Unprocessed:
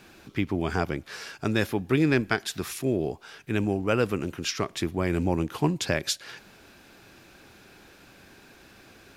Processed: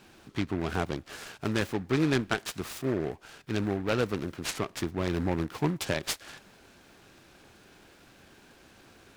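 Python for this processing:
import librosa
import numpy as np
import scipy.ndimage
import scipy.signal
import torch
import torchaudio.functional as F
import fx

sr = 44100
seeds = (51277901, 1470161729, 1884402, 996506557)

y = fx.noise_mod_delay(x, sr, seeds[0], noise_hz=1200.0, depth_ms=0.066)
y = y * 10.0 ** (-3.5 / 20.0)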